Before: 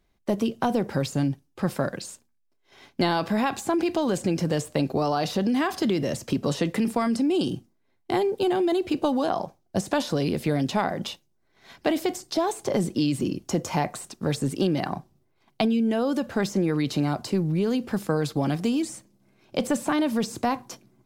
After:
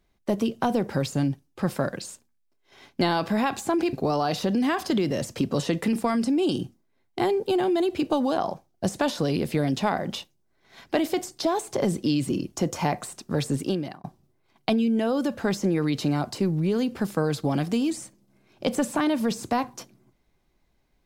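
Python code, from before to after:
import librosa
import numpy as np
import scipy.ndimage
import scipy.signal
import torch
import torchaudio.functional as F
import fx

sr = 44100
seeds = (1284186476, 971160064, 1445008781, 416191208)

y = fx.edit(x, sr, fx.cut(start_s=3.93, length_s=0.92),
    fx.fade_out_span(start_s=14.52, length_s=0.44), tone=tone)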